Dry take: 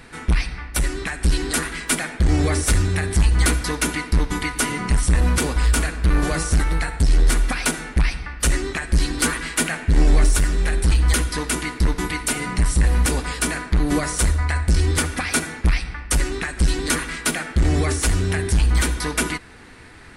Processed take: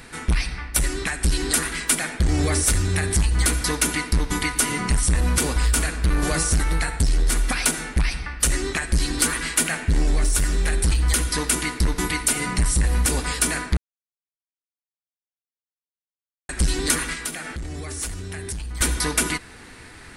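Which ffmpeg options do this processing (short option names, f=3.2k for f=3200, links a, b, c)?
-filter_complex "[0:a]asettb=1/sr,asplit=3[a][b][c];[a]atrim=end=17.134[d];[b]atrim=start=17.13:end=18.81,asetpts=PTS-STARTPTS,afade=t=in:d=0.004:c=qsin,afade=t=out:st=1.676:d=0.004:c=qsin,acompressor=threshold=-29dB:ratio=10:attack=3.2:release=140:knee=1:detection=peak[e];[c]atrim=start=18.806[f];[d][e]acrossfade=d=0.004:c1=hsin:c2=qsin[g];[g][f]acrossfade=d=0.004:c1=qsin:c2=hsin,asplit=3[h][i][j];[h]atrim=end=13.77,asetpts=PTS-STARTPTS,afade=t=out:st=13.766:d=0.004:c=hsin[k];[i]atrim=start=13.77:end=16.49,asetpts=PTS-STARTPTS,volume=0[l];[j]atrim=start=16.49,asetpts=PTS-STARTPTS,afade=t=in:d=0.004:c=hsin[m];[k][l][m]concat=n=3:v=0:a=1,highshelf=f=4.7k:g=7.5,acompressor=threshold=-16dB:ratio=6"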